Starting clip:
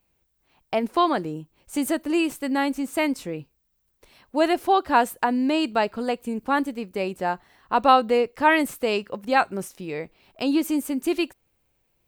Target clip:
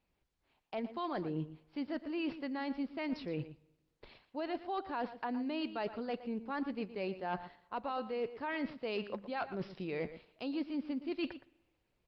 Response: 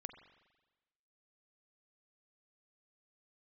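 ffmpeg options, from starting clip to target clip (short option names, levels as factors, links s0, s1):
-filter_complex "[0:a]alimiter=limit=0.237:level=0:latency=1:release=110,areverse,acompressor=threshold=0.0158:ratio=12,areverse,agate=range=0.447:threshold=0.00126:ratio=16:detection=peak,asoftclip=type=hard:threshold=0.0282,asplit=2[s0][s1];[s1]adelay=116.6,volume=0.224,highshelf=f=4000:g=-2.62[s2];[s0][s2]amix=inputs=2:normalize=0,asplit=2[s3][s4];[1:a]atrim=start_sample=2205,lowshelf=f=88:g=-10.5[s5];[s4][s5]afir=irnorm=-1:irlink=0,volume=0.398[s6];[s3][s6]amix=inputs=2:normalize=0,aresample=11025,aresample=44100" -ar 48000 -c:a libopus -b:a 32k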